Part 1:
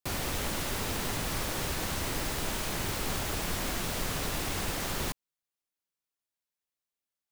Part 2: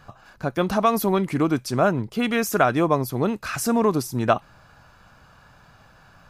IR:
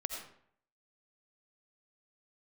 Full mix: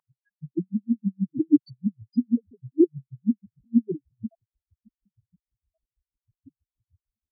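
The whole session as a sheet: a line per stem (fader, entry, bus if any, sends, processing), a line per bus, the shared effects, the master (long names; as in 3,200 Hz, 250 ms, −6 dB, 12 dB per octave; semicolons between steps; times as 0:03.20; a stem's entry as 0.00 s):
−0.5 dB, 2.35 s, no send, no processing
+2.5 dB, 0.00 s, no send, lower of the sound and its delayed copy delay 0.41 ms; flat-topped bell 2,800 Hz −10 dB 1.2 octaves; slew-rate limiting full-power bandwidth 62 Hz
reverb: not used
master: leveller curve on the samples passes 2; spectral peaks only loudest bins 1; auto-filter high-pass sine 6.3 Hz 280–3,200 Hz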